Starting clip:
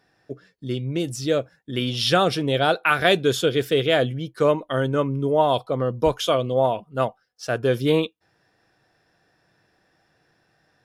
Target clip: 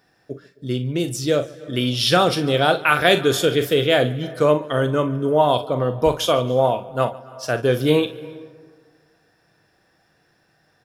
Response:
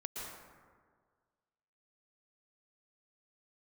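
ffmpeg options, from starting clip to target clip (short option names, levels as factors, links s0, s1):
-filter_complex "[0:a]highshelf=f=11000:g=8.5,aecho=1:1:40|60:0.282|0.15,asplit=2[s0][s1];[1:a]atrim=start_sample=2205,adelay=144[s2];[s1][s2]afir=irnorm=-1:irlink=0,volume=0.133[s3];[s0][s3]amix=inputs=2:normalize=0,volume=1.26"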